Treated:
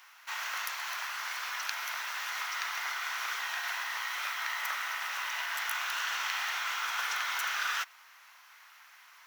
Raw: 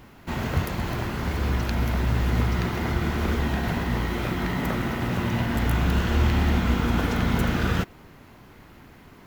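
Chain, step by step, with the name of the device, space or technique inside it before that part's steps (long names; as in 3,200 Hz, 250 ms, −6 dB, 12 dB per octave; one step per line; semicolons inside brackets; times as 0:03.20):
headphones lying on a table (high-pass filter 1,100 Hz 24 dB per octave; parametric band 5,800 Hz +7 dB 0.24 octaves)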